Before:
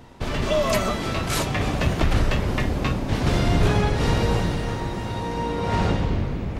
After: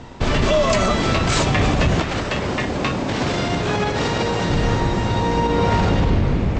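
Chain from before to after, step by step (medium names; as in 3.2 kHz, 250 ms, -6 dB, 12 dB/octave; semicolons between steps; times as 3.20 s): steep low-pass 8.1 kHz 96 dB/octave; peak limiter -17 dBFS, peak gain reduction 8.5 dB; 2.00–4.50 s: high-pass 240 Hz 6 dB/octave; trim +8.5 dB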